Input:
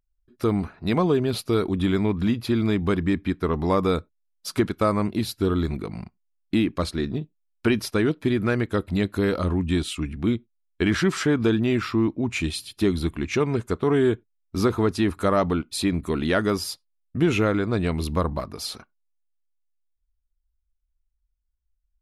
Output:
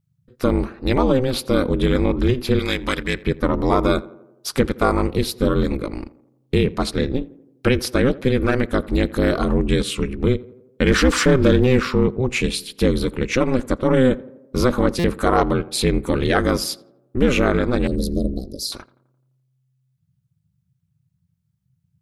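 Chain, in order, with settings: 2.59–3.23 s: tilt shelf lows -9.5 dB, about 1.2 kHz; 10.87–11.80 s: waveshaping leveller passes 1; 17.87–18.72 s: elliptic band-stop 400–4400 Hz, stop band 40 dB; in parallel at -3 dB: peak limiter -16.5 dBFS, peak gain reduction 7.5 dB; on the sum: ring modulator 130 Hz; on a send: tape echo 84 ms, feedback 63%, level -18 dB, low-pass 1.4 kHz; on the sum: buffer glitch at 14.99 s, samples 256, times 8; trim +4 dB

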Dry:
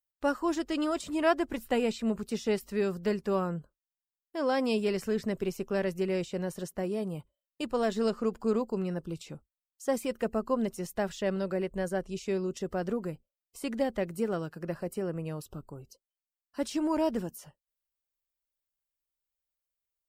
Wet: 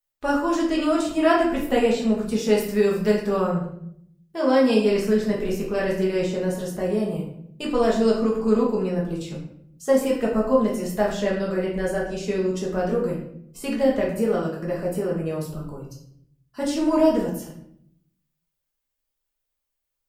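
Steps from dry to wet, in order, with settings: 2.38–3.27 s: treble shelf 6.7 kHz +7.5 dB; simulated room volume 130 m³, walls mixed, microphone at 1.4 m; trim +2.5 dB

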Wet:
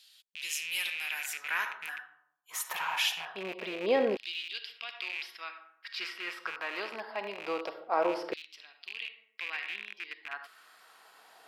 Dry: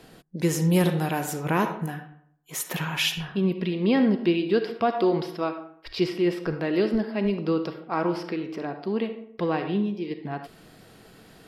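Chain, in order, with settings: rattle on loud lows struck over -34 dBFS, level -26 dBFS; LFO high-pass saw down 0.24 Hz 480–3800 Hz; trim -5 dB

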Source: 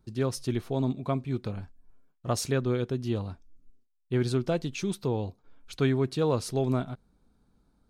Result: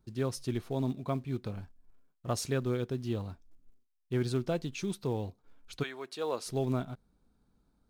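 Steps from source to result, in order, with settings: 5.82–6.45 s: high-pass 940 Hz -> 350 Hz 12 dB/octave; in parallel at -10 dB: short-mantissa float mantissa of 2-bit; on the sum: trim -6.5 dB

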